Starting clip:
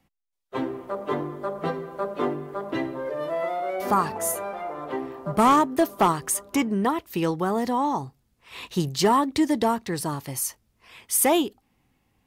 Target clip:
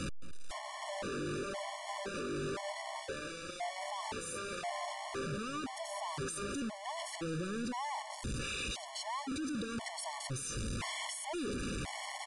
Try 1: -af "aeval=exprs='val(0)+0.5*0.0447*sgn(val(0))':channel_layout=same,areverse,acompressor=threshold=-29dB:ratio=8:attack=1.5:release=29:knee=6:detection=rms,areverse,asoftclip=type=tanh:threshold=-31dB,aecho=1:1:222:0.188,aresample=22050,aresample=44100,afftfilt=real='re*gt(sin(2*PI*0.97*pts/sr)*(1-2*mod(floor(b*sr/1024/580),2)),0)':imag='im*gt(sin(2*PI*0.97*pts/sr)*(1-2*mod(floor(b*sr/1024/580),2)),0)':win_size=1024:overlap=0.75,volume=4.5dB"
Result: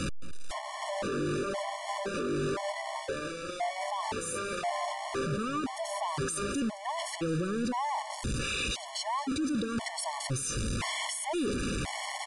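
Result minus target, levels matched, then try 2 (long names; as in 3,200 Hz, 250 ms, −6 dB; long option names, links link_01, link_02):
soft clipping: distortion −6 dB
-af "aeval=exprs='val(0)+0.5*0.0447*sgn(val(0))':channel_layout=same,areverse,acompressor=threshold=-29dB:ratio=8:attack=1.5:release=29:knee=6:detection=rms,areverse,asoftclip=type=tanh:threshold=-40.5dB,aecho=1:1:222:0.188,aresample=22050,aresample=44100,afftfilt=real='re*gt(sin(2*PI*0.97*pts/sr)*(1-2*mod(floor(b*sr/1024/580),2)),0)':imag='im*gt(sin(2*PI*0.97*pts/sr)*(1-2*mod(floor(b*sr/1024/580),2)),0)':win_size=1024:overlap=0.75,volume=4.5dB"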